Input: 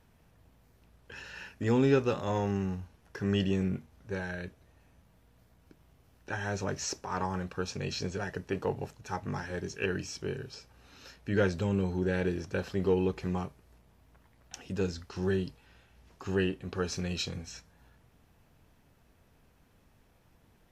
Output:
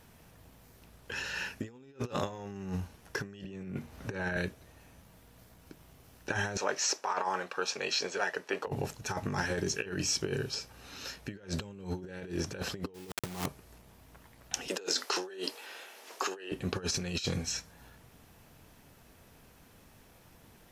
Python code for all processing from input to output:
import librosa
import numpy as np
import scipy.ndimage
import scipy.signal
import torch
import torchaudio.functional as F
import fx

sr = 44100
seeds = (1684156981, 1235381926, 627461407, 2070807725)

y = fx.chain(x, sr, fx.bass_treble(bass_db=-1, treble_db=-6),
    fx.notch(hz=3300.0, q=24.0),
    fx.band_squash(depth_pct=70), at=(3.44, 4.37))
y = fx.chain(y, sr, fx.highpass(hz=550.0, slope=12),
    fx.high_shelf(hz=6000.0, db=-11.0), at=(6.57, 8.67))
y = fx.chain(y, sr, fx.high_shelf(hz=2700.0, db=-3.5),
    fx.quant_dither(seeds[0], bits=6, dither='none'), at=(12.94, 13.46))
y = fx.chain(y, sr, fx.highpass(hz=380.0, slope=24),
    fx.over_compress(threshold_db=-46.0, ratio=-1.0), at=(14.68, 16.52))
y = fx.high_shelf(y, sr, hz=4600.0, db=6.5)
y = fx.over_compress(y, sr, threshold_db=-36.0, ratio=-0.5)
y = fx.low_shelf(y, sr, hz=97.0, db=-6.0)
y = y * 10.0 ** (2.5 / 20.0)